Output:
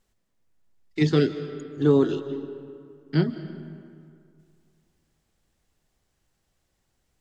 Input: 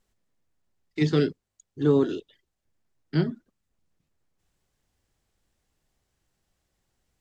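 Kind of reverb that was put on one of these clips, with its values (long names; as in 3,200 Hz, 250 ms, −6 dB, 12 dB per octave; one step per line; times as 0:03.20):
comb and all-pass reverb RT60 2.3 s, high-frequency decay 0.6×, pre-delay 115 ms, DRR 12 dB
level +2 dB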